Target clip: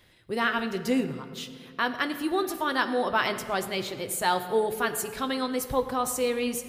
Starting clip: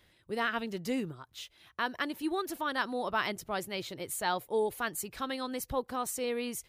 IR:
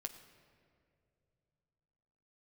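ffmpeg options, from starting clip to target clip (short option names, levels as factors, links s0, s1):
-filter_complex "[1:a]atrim=start_sample=2205[s0];[0:a][s0]afir=irnorm=-1:irlink=0,volume=2.82"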